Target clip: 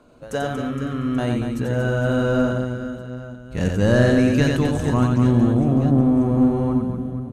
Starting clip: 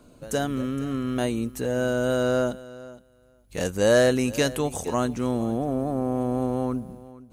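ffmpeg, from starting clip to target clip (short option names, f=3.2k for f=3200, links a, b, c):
-filter_complex "[0:a]aecho=1:1:90|234|464.4|833|1423:0.631|0.398|0.251|0.158|0.1,asplit=2[a][b];[b]highpass=f=720:p=1,volume=11dB,asoftclip=type=tanh:threshold=-4dB[c];[a][c]amix=inputs=2:normalize=0,lowpass=f=1.4k:p=1,volume=-6dB,asubboost=boost=10.5:cutoff=180"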